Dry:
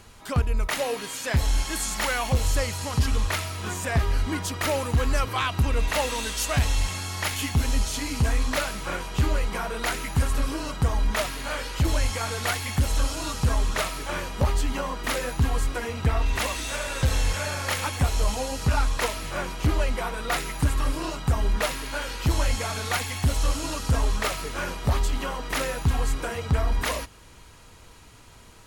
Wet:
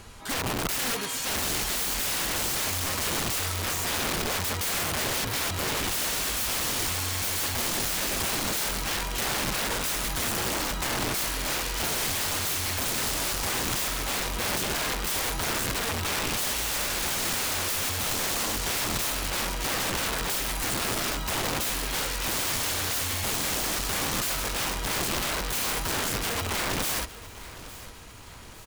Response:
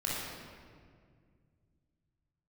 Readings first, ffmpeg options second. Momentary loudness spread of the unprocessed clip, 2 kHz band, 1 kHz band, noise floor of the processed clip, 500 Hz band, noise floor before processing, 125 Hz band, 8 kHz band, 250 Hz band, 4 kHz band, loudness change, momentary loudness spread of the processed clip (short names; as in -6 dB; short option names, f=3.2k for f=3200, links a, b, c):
5 LU, 0.0 dB, -1.5 dB, -43 dBFS, -4.0 dB, -49 dBFS, -10.5 dB, +5.5 dB, -3.5 dB, +4.0 dB, 0.0 dB, 2 LU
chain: -af "aeval=exprs='(mod(21.1*val(0)+1,2)-1)/21.1':c=same,aecho=1:1:858|1716|2574|3432:0.141|0.0636|0.0286|0.0129,volume=3dB"